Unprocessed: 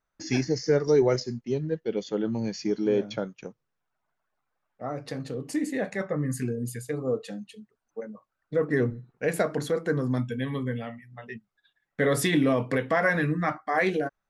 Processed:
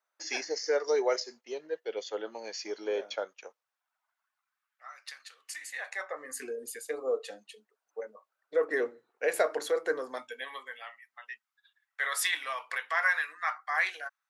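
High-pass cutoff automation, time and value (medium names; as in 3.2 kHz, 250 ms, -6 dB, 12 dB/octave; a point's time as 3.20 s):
high-pass 24 dB/octave
3.29 s 510 Hz
4.87 s 1.4 kHz
5.53 s 1.4 kHz
6.45 s 440 Hz
9.95 s 440 Hz
10.95 s 990 Hz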